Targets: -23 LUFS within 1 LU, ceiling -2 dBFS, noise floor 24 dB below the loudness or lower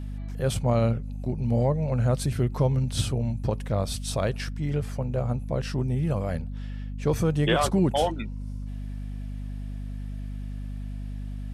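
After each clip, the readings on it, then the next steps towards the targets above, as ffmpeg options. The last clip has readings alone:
hum 50 Hz; harmonics up to 250 Hz; hum level -31 dBFS; loudness -28.0 LUFS; peak -11.0 dBFS; loudness target -23.0 LUFS
-> -af "bandreject=f=50:t=h:w=6,bandreject=f=100:t=h:w=6,bandreject=f=150:t=h:w=6,bandreject=f=200:t=h:w=6,bandreject=f=250:t=h:w=6"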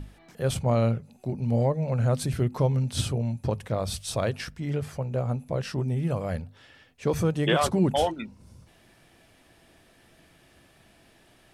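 hum none; loudness -27.5 LUFS; peak -10.5 dBFS; loudness target -23.0 LUFS
-> -af "volume=4.5dB"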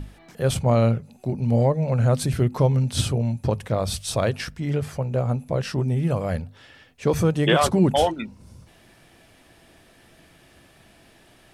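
loudness -23.0 LUFS; peak -6.0 dBFS; noise floor -55 dBFS

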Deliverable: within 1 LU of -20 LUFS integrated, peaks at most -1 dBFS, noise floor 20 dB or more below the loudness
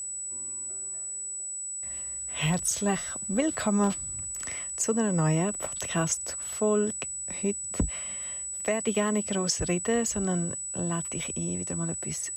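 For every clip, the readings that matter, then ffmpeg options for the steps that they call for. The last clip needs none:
steady tone 7900 Hz; tone level -33 dBFS; loudness -28.5 LUFS; peak -14.5 dBFS; loudness target -20.0 LUFS
-> -af "bandreject=f=7.9k:w=30"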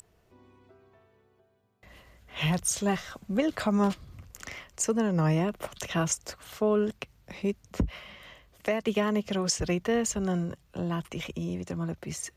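steady tone none; loudness -29.5 LUFS; peak -15.5 dBFS; loudness target -20.0 LUFS
-> -af "volume=9.5dB"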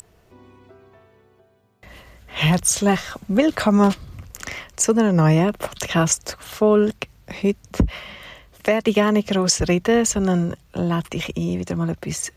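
loudness -20.0 LUFS; peak -6.0 dBFS; noise floor -56 dBFS

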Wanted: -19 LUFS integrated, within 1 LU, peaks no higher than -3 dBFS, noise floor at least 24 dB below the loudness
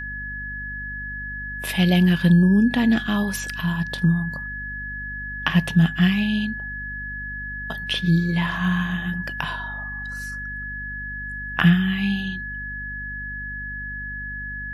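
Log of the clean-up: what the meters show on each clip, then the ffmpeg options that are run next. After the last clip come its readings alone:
hum 50 Hz; harmonics up to 250 Hz; hum level -34 dBFS; steady tone 1700 Hz; tone level -30 dBFS; loudness -23.5 LUFS; peak -3.0 dBFS; loudness target -19.0 LUFS
-> -af "bandreject=f=50:t=h:w=4,bandreject=f=100:t=h:w=4,bandreject=f=150:t=h:w=4,bandreject=f=200:t=h:w=4,bandreject=f=250:t=h:w=4"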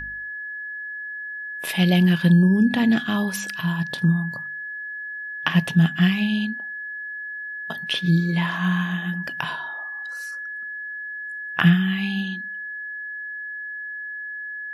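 hum none; steady tone 1700 Hz; tone level -30 dBFS
-> -af "bandreject=f=1.7k:w=30"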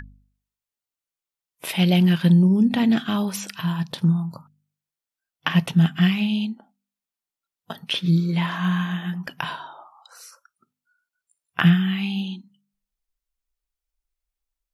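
steady tone none; loudness -21.5 LUFS; peak -3.5 dBFS; loudness target -19.0 LUFS
-> -af "volume=2.5dB,alimiter=limit=-3dB:level=0:latency=1"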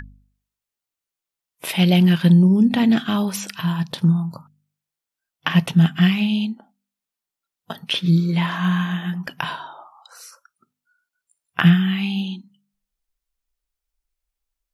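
loudness -19.0 LUFS; peak -3.0 dBFS; noise floor -87 dBFS

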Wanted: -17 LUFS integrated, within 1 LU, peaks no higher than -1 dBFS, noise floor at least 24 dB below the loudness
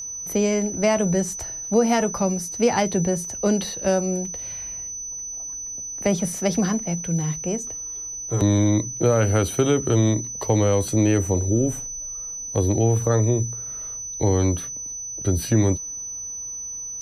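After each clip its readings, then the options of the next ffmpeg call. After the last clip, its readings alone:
steady tone 6000 Hz; tone level -30 dBFS; loudness -23.0 LUFS; peak -7.0 dBFS; loudness target -17.0 LUFS
-> -af "bandreject=f=6k:w=30"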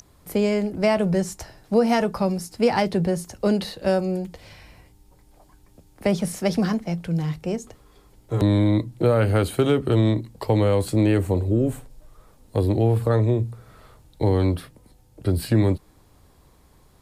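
steady tone none; loudness -22.5 LUFS; peak -7.5 dBFS; loudness target -17.0 LUFS
-> -af "volume=5.5dB"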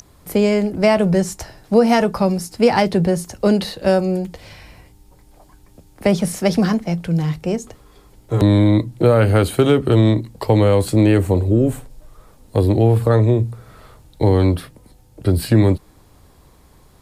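loudness -17.0 LUFS; peak -2.0 dBFS; noise floor -50 dBFS

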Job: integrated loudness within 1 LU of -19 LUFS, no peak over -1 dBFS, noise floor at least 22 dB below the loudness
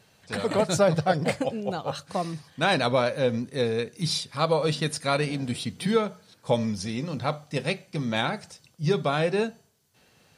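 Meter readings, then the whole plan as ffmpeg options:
loudness -27.0 LUFS; peak -9.5 dBFS; loudness target -19.0 LUFS
-> -af "volume=8dB"

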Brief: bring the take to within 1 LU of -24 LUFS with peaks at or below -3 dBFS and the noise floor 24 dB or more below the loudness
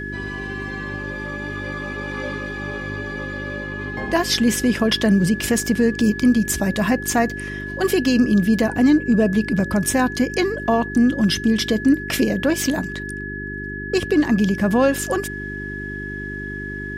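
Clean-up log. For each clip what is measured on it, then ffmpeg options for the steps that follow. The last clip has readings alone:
hum 50 Hz; harmonics up to 400 Hz; hum level -30 dBFS; steady tone 1700 Hz; tone level -30 dBFS; loudness -20.5 LUFS; peak -6.5 dBFS; loudness target -24.0 LUFS
-> -af "bandreject=f=50:t=h:w=4,bandreject=f=100:t=h:w=4,bandreject=f=150:t=h:w=4,bandreject=f=200:t=h:w=4,bandreject=f=250:t=h:w=4,bandreject=f=300:t=h:w=4,bandreject=f=350:t=h:w=4,bandreject=f=400:t=h:w=4"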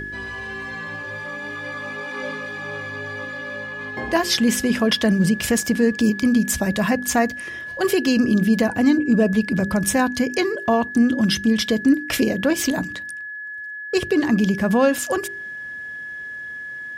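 hum none; steady tone 1700 Hz; tone level -30 dBFS
-> -af "bandreject=f=1.7k:w=30"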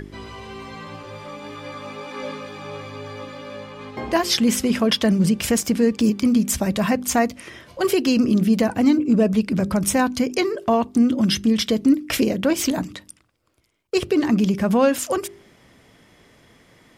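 steady tone none; loudness -20.0 LUFS; peak -7.0 dBFS; loudness target -24.0 LUFS
-> -af "volume=-4dB"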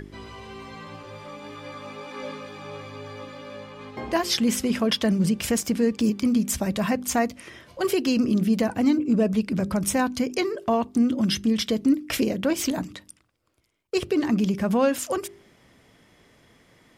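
loudness -24.0 LUFS; peak -11.0 dBFS; noise floor -59 dBFS

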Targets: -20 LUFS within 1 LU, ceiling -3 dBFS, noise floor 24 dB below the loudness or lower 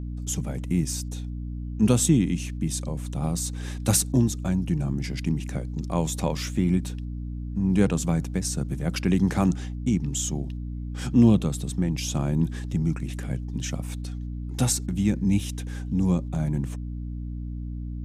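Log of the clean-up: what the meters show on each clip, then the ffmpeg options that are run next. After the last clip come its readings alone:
hum 60 Hz; harmonics up to 300 Hz; hum level -30 dBFS; loudness -26.5 LUFS; peak -6.5 dBFS; loudness target -20.0 LUFS
-> -af "bandreject=f=60:t=h:w=6,bandreject=f=120:t=h:w=6,bandreject=f=180:t=h:w=6,bandreject=f=240:t=h:w=6,bandreject=f=300:t=h:w=6"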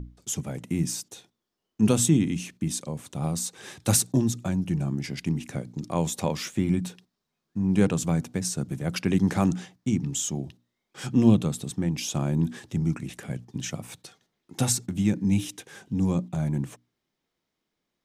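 hum none; loudness -27.0 LUFS; peak -5.5 dBFS; loudness target -20.0 LUFS
-> -af "volume=7dB,alimiter=limit=-3dB:level=0:latency=1"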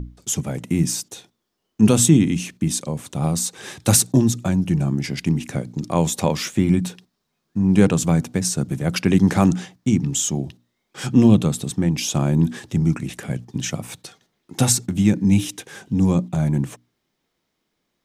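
loudness -20.0 LUFS; peak -3.0 dBFS; noise floor -75 dBFS

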